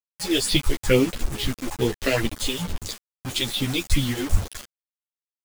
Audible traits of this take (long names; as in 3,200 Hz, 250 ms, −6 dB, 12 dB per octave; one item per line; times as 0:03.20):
phaser sweep stages 4, 2.3 Hz, lowest notch 140–1,600 Hz
a quantiser's noise floor 6 bits, dither none
a shimmering, thickened sound